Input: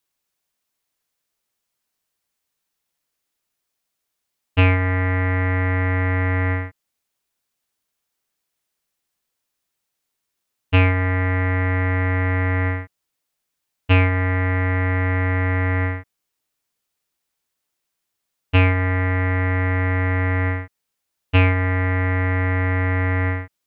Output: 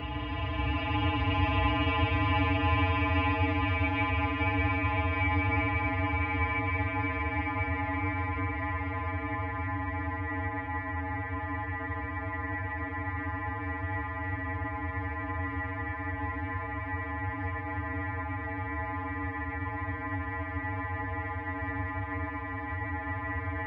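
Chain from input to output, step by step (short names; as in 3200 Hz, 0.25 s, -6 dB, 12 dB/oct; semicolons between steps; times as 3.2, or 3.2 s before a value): Paulstretch 46×, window 0.10 s, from 13.88; metallic resonator 62 Hz, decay 0.43 s, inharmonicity 0.03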